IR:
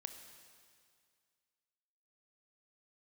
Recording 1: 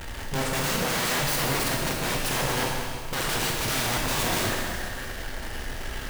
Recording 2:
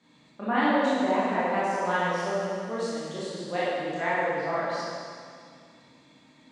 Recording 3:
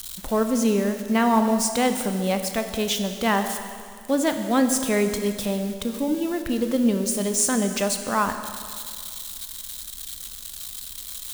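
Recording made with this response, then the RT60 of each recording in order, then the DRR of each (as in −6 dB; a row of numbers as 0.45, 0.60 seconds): 3; 2.1, 2.1, 2.1 seconds; −2.0, −10.0, 6.5 decibels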